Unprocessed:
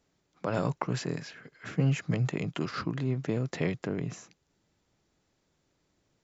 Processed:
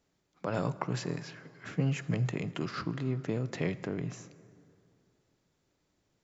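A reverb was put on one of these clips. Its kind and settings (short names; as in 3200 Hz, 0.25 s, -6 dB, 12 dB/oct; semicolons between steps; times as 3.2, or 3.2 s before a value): plate-style reverb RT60 2.6 s, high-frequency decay 0.55×, DRR 14.5 dB; gain -2.5 dB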